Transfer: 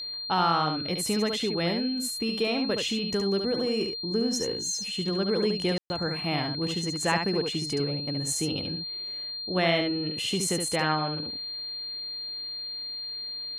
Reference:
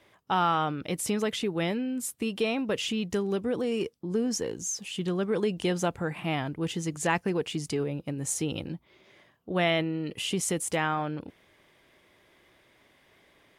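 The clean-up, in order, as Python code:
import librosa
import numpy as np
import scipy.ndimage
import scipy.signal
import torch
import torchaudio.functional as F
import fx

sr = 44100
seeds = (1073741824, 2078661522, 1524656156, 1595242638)

y = fx.notch(x, sr, hz=4200.0, q=30.0)
y = fx.fix_ambience(y, sr, seeds[0], print_start_s=11.6, print_end_s=12.1, start_s=5.78, end_s=5.9)
y = fx.fix_echo_inverse(y, sr, delay_ms=71, level_db=-5.5)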